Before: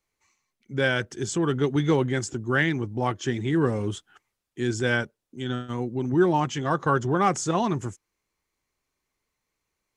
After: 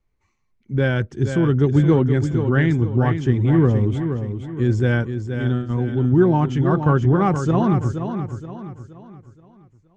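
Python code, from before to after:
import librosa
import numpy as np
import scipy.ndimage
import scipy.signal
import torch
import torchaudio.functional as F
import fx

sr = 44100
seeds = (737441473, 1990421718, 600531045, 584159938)

p1 = fx.riaa(x, sr, side='playback')
y = p1 + fx.echo_feedback(p1, sr, ms=473, feedback_pct=40, wet_db=-8.0, dry=0)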